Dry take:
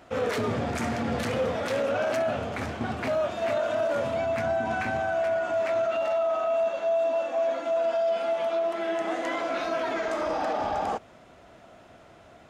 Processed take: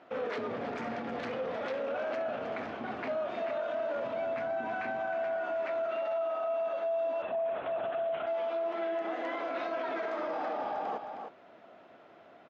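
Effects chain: distance through air 230 m; delay 313 ms -10 dB; 7.22–8.27 s: LPC vocoder at 8 kHz whisper; peak limiter -24 dBFS, peak gain reduction 9 dB; high-pass 250 Hz 12 dB/octave; trim -2.5 dB

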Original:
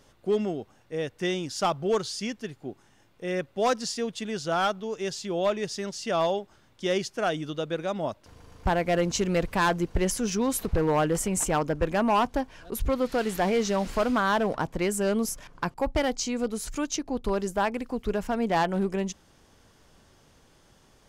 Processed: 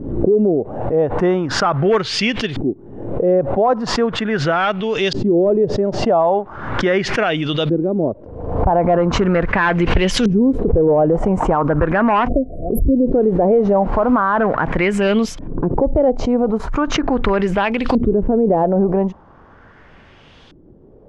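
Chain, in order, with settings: LFO low-pass saw up 0.39 Hz 290–3700 Hz; spectral selection erased 12.28–13.12 s, 750–10000 Hz; loudness maximiser +18.5 dB; swell ahead of each attack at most 59 dB/s; trim -6.5 dB

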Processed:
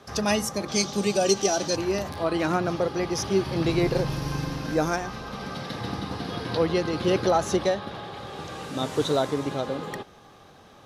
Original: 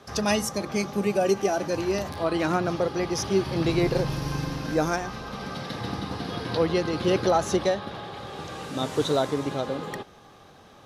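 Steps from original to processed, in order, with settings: 0.68–1.76 s: high-order bell 5.2 kHz +11.5 dB

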